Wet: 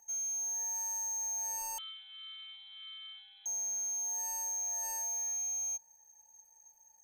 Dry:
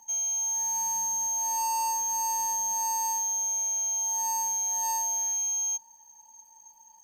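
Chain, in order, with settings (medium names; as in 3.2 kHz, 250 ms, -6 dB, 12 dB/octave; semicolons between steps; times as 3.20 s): static phaser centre 970 Hz, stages 6; 1.78–3.46 s: frequency inversion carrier 4 kHz; trim -3.5 dB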